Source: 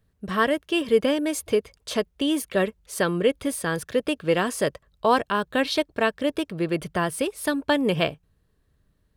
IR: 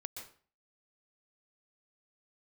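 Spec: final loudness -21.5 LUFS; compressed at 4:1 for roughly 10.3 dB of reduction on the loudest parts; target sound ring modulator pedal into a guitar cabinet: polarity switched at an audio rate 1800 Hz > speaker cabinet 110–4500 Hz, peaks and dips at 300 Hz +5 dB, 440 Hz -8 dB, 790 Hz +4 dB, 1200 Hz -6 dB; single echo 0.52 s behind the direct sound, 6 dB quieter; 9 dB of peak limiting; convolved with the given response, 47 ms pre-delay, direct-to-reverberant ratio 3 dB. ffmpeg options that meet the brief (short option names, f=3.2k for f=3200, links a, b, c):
-filter_complex "[0:a]acompressor=threshold=-27dB:ratio=4,alimiter=limit=-23dB:level=0:latency=1,aecho=1:1:520:0.501,asplit=2[a][b];[1:a]atrim=start_sample=2205,adelay=47[c];[b][c]afir=irnorm=-1:irlink=0,volume=-0.5dB[d];[a][d]amix=inputs=2:normalize=0,aeval=exprs='val(0)*sgn(sin(2*PI*1800*n/s))':c=same,highpass=110,equalizer=f=300:t=q:w=4:g=5,equalizer=f=440:t=q:w=4:g=-8,equalizer=f=790:t=q:w=4:g=4,equalizer=f=1.2k:t=q:w=4:g=-6,lowpass=f=4.5k:w=0.5412,lowpass=f=4.5k:w=1.3066,volume=9.5dB"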